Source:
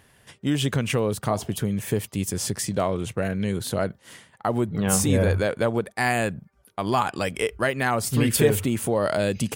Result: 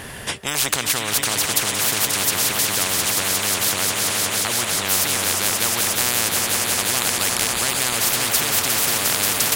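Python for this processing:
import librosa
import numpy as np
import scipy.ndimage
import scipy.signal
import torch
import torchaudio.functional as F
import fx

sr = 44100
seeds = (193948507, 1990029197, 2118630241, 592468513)

y = fx.echo_swell(x, sr, ms=178, loudest=5, wet_db=-14)
y = fx.spectral_comp(y, sr, ratio=10.0)
y = F.gain(torch.from_numpy(y), 5.5).numpy()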